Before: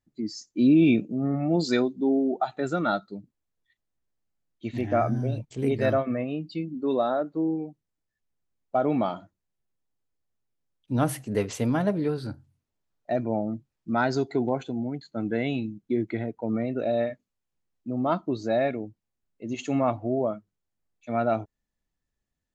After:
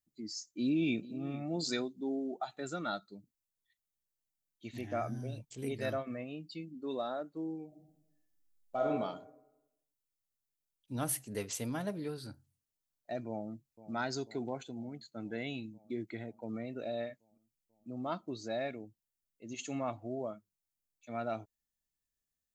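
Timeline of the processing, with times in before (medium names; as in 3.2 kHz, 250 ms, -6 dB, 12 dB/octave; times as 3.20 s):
0.58–1.40 s: echo throw 440 ms, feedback 10%, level -17 dB
7.67–8.88 s: reverb throw, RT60 0.92 s, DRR -3 dB
13.28–13.94 s: echo throw 490 ms, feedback 75%, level -16.5 dB
whole clip: pre-emphasis filter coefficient 0.8; trim +1 dB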